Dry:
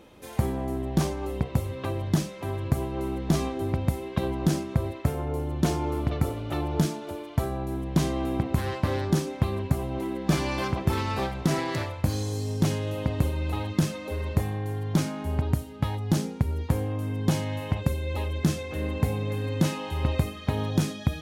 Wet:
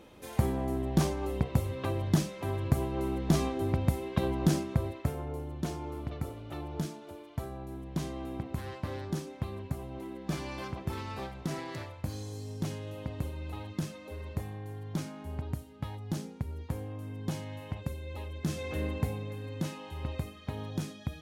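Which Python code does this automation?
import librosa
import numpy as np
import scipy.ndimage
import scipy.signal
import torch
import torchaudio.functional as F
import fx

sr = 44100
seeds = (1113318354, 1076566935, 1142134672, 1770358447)

y = fx.gain(x, sr, db=fx.line((4.57, -2.0), (5.67, -10.5), (18.42, -10.5), (18.67, -1.0), (19.35, -10.5)))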